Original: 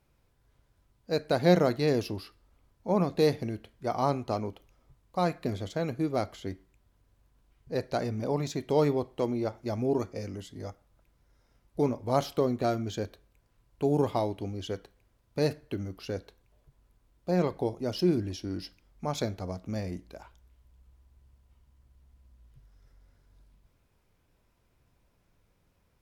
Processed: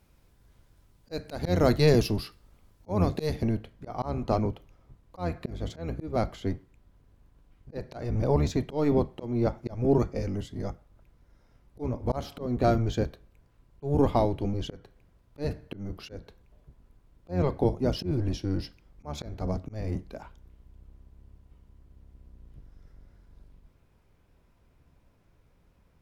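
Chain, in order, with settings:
sub-octave generator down 1 octave, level 0 dB
high-shelf EQ 3,500 Hz +3.5 dB, from 0:03.42 −7 dB
volume swells 253 ms
level +4.5 dB

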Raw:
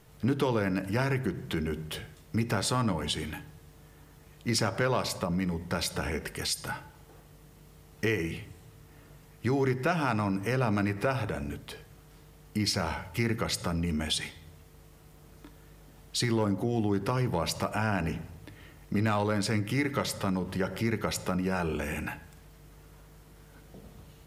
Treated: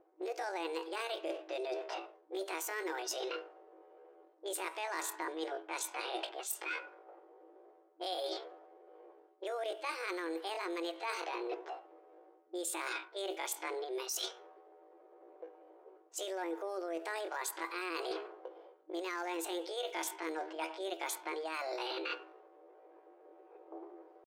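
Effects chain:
brick-wall band-pass 190–9,700 Hz
pitch shifter +9 semitones
low-pass that shuts in the quiet parts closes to 520 Hz, open at −27.5 dBFS
reversed playback
downward compressor 10 to 1, threshold −42 dBFS, peak gain reduction 18.5 dB
reversed playback
level +6 dB

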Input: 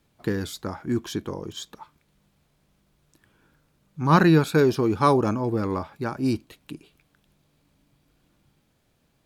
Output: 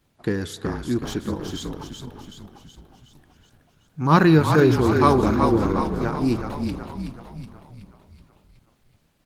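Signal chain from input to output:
echo with shifted repeats 373 ms, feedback 56%, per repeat −36 Hz, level −5.5 dB
spring reverb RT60 2.9 s, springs 32 ms, chirp 30 ms, DRR 15.5 dB
level +2 dB
Opus 16 kbit/s 48,000 Hz

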